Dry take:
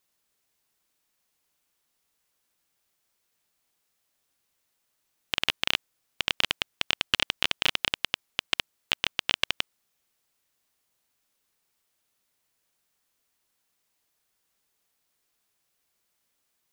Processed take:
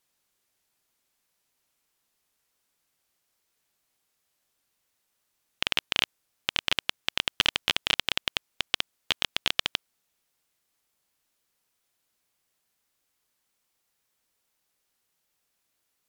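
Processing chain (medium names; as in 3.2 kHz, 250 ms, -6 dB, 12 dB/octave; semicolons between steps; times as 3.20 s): gliding tape speed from 90% -> 118%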